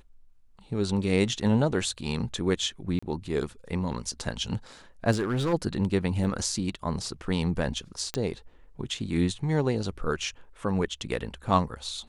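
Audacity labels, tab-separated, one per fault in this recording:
2.990000	3.020000	dropout 35 ms
5.110000	5.540000	clipped -22.5 dBFS
6.240000	6.240000	dropout 4.3 ms
8.140000	8.140000	pop -14 dBFS

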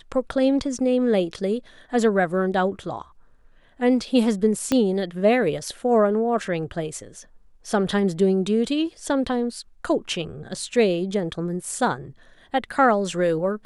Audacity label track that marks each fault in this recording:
4.720000	4.720000	pop -8 dBFS

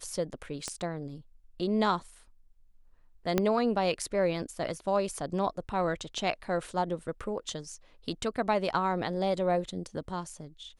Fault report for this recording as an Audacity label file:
0.680000	0.680000	pop -20 dBFS
3.380000	3.380000	pop -11 dBFS

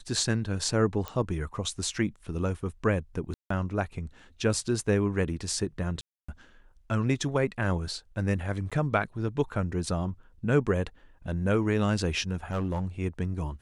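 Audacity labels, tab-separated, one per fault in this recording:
1.080000	1.080000	pop -19 dBFS
3.340000	3.500000	dropout 164 ms
6.010000	6.290000	dropout 275 ms
8.700000	8.720000	dropout 16 ms
12.510000	12.870000	clipped -24.5 dBFS

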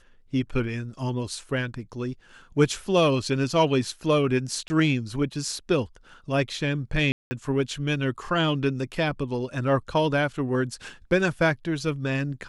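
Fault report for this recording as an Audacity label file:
4.680000	4.700000	dropout 20 ms
7.120000	7.310000	dropout 190 ms

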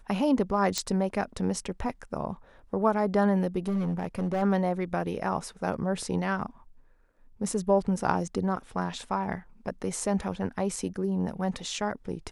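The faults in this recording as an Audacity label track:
0.780000	0.780000	pop -12 dBFS
3.670000	4.430000	clipped -24 dBFS

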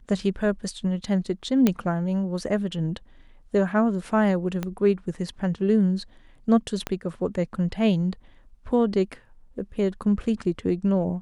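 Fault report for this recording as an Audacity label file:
1.670000	1.670000	pop -7 dBFS
4.630000	4.630000	pop -15 dBFS
6.870000	6.870000	pop -12 dBFS

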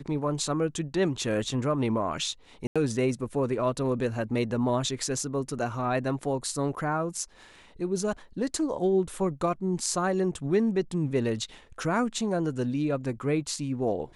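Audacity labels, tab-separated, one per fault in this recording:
2.670000	2.760000	dropout 86 ms

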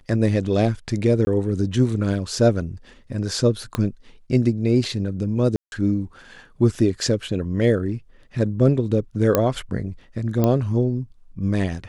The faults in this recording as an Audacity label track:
1.250000	1.270000	dropout 20 ms
3.750000	3.750000	pop -10 dBFS
5.560000	5.720000	dropout 161 ms
6.750000	6.750000	dropout 2.3 ms
9.350000	9.350000	pop -4 dBFS
10.440000	10.440000	pop -8 dBFS

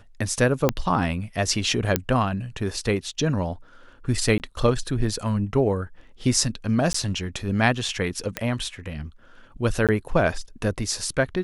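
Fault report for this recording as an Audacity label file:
0.690000	0.690000	pop -5 dBFS
1.960000	1.960000	pop -3 dBFS
4.380000	4.400000	dropout 19 ms
6.930000	6.940000	dropout 14 ms
8.370000	8.370000	pop -9 dBFS
9.870000	9.890000	dropout 17 ms

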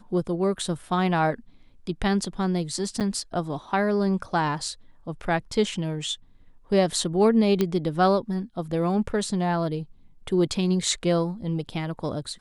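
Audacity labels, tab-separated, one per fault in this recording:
3.000000	3.010000	dropout 7.7 ms
7.610000	7.610000	pop -10 dBFS

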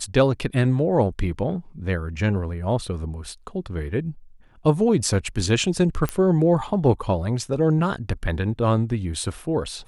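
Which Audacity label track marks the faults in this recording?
6.090000	6.090000	pop -10 dBFS

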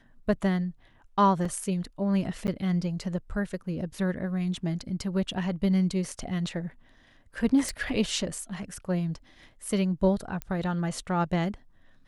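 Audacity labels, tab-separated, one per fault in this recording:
1.450000	1.450000	dropout 4.1 ms
2.470000	2.480000	dropout 9.7 ms
7.690000	7.690000	pop
10.420000	10.420000	pop -18 dBFS

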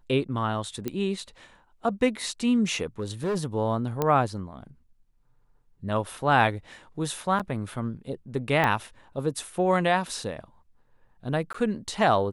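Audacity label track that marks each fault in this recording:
0.880000	0.880000	pop -16 dBFS
2.990000	3.370000	clipped -24 dBFS
4.020000	4.020000	pop -12 dBFS
7.390000	7.400000	dropout 7.1 ms
8.640000	8.640000	pop -11 dBFS
11.530000	11.540000	dropout 14 ms

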